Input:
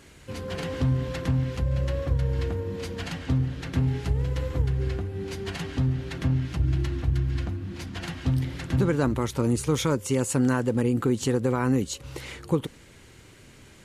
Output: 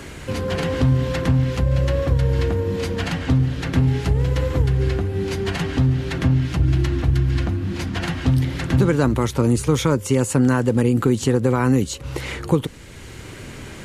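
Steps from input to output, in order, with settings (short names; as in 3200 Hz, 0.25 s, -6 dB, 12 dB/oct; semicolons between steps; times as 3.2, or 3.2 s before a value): three-band squash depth 40%; gain +6.5 dB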